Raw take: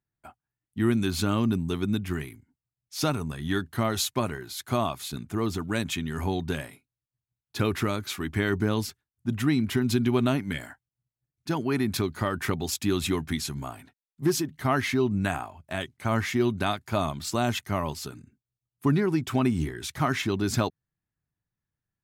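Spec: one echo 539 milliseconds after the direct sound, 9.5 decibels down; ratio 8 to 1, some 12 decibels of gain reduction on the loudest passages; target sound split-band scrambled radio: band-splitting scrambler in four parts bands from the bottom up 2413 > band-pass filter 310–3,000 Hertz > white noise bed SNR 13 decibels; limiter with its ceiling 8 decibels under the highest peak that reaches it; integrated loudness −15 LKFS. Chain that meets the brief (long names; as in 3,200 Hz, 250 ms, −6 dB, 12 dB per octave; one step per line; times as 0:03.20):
downward compressor 8 to 1, threshold −32 dBFS
brickwall limiter −26.5 dBFS
single-tap delay 539 ms −9.5 dB
band-splitting scrambler in four parts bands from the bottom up 2413
band-pass filter 310–3,000 Hz
white noise bed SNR 13 dB
level +23.5 dB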